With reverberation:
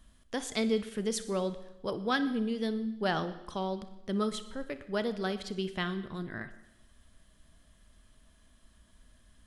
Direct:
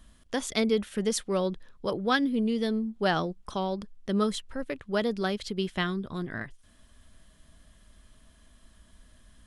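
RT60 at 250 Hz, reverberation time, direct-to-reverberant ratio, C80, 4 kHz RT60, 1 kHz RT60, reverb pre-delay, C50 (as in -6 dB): 0.85 s, 0.90 s, 11.0 dB, 14.5 dB, 0.90 s, 0.90 s, 31 ms, 12.0 dB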